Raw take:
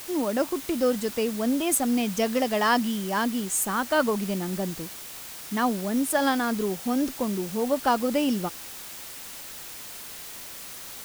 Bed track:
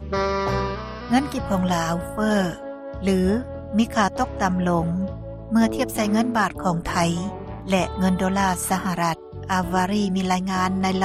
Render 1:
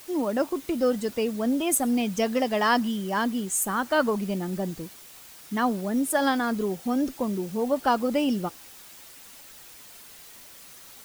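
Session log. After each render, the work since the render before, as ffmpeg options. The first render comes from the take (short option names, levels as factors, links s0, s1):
-af "afftdn=nr=8:nf=-40"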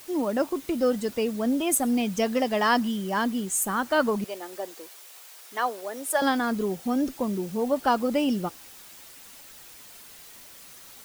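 -filter_complex "[0:a]asettb=1/sr,asplit=3[s0][s1][s2];[s0]atrim=end=4.244[s3];[s1]atrim=start=4.24:end=6.22,asetpts=PTS-STARTPTS,afade=t=in:d=0.004:c=qsin,afade=t=out:st=1.976:d=0.004:c=qsin,highpass=f=420:w=0.5412,highpass=f=420:w=1.3066[s4];[s2]atrim=start=6.216[s5];[s3][s4]acrossfade=d=0.004:c1=hsin:c2=qsin[s6];[s6][s5]acrossfade=d=0.004:c1=qsin:c2=hsin"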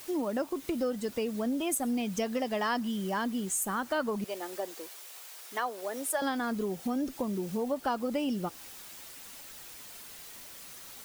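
-af "acompressor=threshold=0.0282:ratio=2.5"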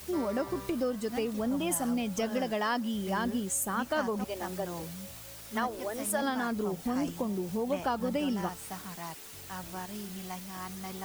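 -filter_complex "[1:a]volume=0.106[s0];[0:a][s0]amix=inputs=2:normalize=0"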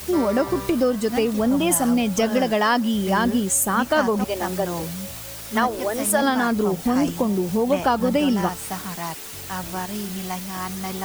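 -af "volume=3.55"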